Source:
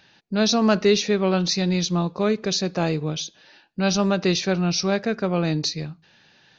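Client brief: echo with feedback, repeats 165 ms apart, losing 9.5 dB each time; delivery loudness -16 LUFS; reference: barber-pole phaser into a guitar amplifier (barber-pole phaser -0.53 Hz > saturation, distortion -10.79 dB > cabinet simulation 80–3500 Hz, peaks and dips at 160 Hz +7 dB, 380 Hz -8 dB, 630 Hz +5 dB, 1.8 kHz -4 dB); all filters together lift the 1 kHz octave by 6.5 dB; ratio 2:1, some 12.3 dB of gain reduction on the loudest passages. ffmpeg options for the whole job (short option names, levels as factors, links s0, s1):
-filter_complex "[0:a]equalizer=f=1000:t=o:g=8,acompressor=threshold=0.0178:ratio=2,aecho=1:1:165|330|495|660:0.335|0.111|0.0365|0.012,asplit=2[s0][s1];[s1]afreqshift=-0.53[s2];[s0][s2]amix=inputs=2:normalize=1,asoftclip=threshold=0.0251,highpass=80,equalizer=f=160:t=q:w=4:g=7,equalizer=f=380:t=q:w=4:g=-8,equalizer=f=630:t=q:w=4:g=5,equalizer=f=1800:t=q:w=4:g=-4,lowpass=f=3500:w=0.5412,lowpass=f=3500:w=1.3066,volume=11.2"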